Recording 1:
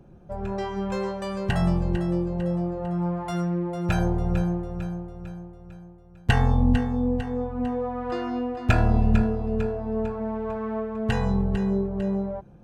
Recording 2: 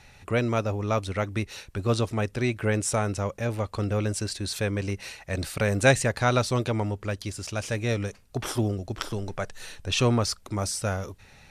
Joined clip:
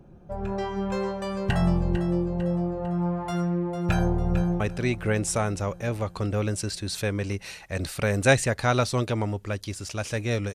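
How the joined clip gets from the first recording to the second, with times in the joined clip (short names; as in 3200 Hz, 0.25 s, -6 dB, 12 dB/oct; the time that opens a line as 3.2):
recording 1
4.15–4.6 echo throw 0.34 s, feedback 70%, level -13 dB
4.6 switch to recording 2 from 2.18 s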